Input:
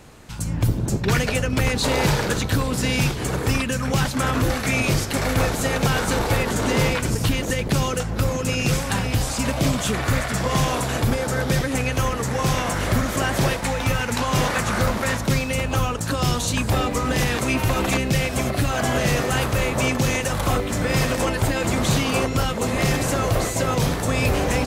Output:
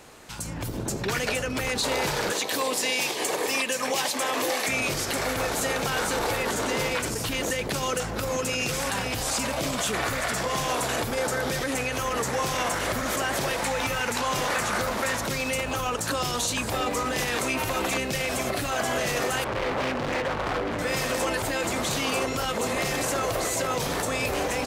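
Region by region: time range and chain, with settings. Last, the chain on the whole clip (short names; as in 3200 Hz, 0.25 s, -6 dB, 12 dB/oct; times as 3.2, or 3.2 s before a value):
2.32–4.68 HPF 380 Hz + bell 1400 Hz -13 dB 0.26 oct
19.44–20.79 LPF 1800 Hz + hard clip -27.5 dBFS + Doppler distortion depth 0.33 ms
whole clip: limiter -21 dBFS; tone controls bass -11 dB, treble +1 dB; AGC gain up to 4.5 dB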